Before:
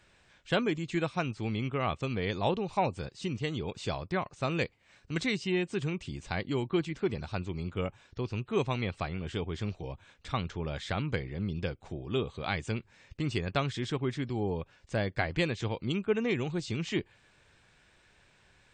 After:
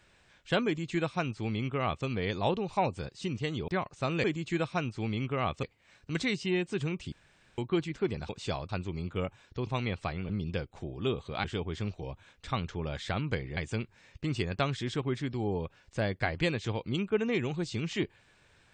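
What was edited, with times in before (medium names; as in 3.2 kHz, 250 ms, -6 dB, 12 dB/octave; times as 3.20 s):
0.66–2.05 s: copy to 4.64 s
3.68–4.08 s: move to 7.30 s
6.13–6.59 s: room tone
8.28–8.63 s: delete
11.38–12.53 s: move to 9.25 s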